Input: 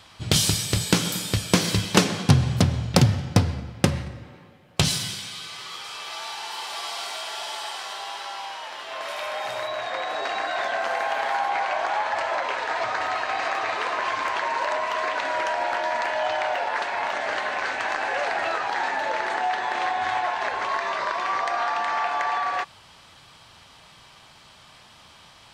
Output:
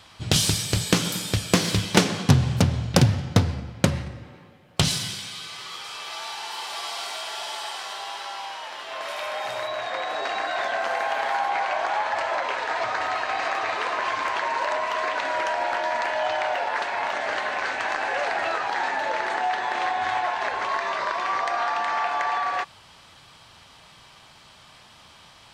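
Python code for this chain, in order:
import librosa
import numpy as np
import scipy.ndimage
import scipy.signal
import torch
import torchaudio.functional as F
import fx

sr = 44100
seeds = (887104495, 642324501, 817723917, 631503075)

y = fx.doppler_dist(x, sr, depth_ms=0.39)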